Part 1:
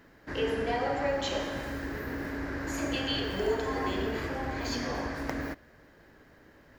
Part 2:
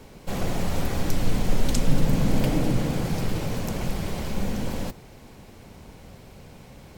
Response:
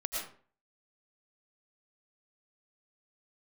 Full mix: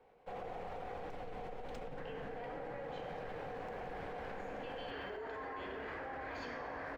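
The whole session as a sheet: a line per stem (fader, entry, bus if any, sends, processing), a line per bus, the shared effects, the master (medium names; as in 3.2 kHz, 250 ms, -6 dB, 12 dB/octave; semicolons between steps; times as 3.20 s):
-3.0 dB, 1.70 s, no send, none
-1.0 dB, 0.00 s, no send, median filter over 3 samples; small resonant body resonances 480/740 Hz, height 12 dB; compression, threshold -21 dBFS, peak gain reduction 10 dB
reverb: none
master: three-band isolator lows -13 dB, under 460 Hz, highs -21 dB, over 2.8 kHz; level held to a coarse grid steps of 22 dB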